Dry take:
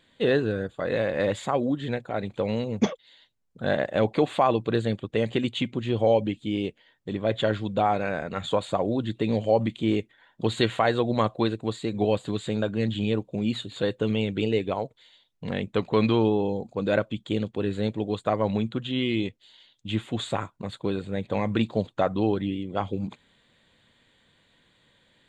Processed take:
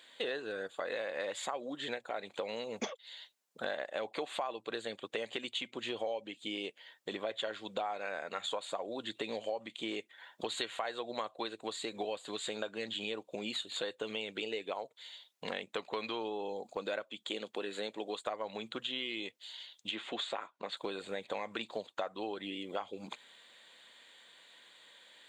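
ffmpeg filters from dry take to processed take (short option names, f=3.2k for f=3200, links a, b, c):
-filter_complex "[0:a]asettb=1/sr,asplit=3[a][b][c];[a]atrim=end=17.034[d];[b]atrim=start=17.03:end=18.27,asetpts=PTS-STARTPTS,afade=t=in:d=0.004:c=qsin,afade=t=out:st=1.236:d=0.004:c=qsin,highpass=170[e];[c]atrim=start=18.266[f];[d][e]acrossfade=d=0.004:c1=hsin:c2=qsin[g];[g][f]acrossfade=d=0.004:c1=qsin:c2=hsin,asettb=1/sr,asplit=3[h][i][j];[h]atrim=end=19.914[k];[i]atrim=start=19.91:end=20.77,asetpts=PTS-STARTPTS,afade=t=in:d=0.004:c=qsin,afade=t=out:st=0.856:d=0.004:c=qsin,highpass=180,lowpass=4.4k[l];[j]atrim=start=20.766[m];[k][l]acrossfade=d=0.004:c1=hsin:c2=qsin[n];[n][m]acrossfade=d=0.004:c1=qsin:c2=hsin,highpass=690,equalizer=f=1.3k:t=o:w=2.9:g=-4.5,acompressor=threshold=-45dB:ratio=5,volume=9dB"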